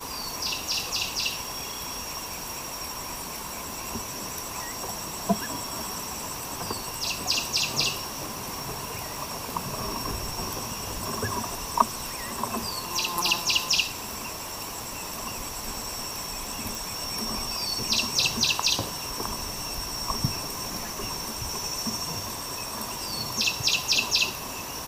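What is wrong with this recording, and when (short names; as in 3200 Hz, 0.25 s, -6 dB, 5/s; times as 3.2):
crackle 38/s -36 dBFS
16.75 pop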